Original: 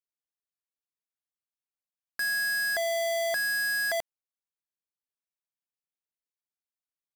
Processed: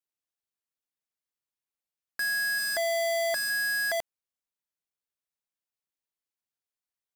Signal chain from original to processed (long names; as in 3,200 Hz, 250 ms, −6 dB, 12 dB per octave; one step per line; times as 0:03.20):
0:02.58–0:03.50: comb filter 3.4 ms, depth 55%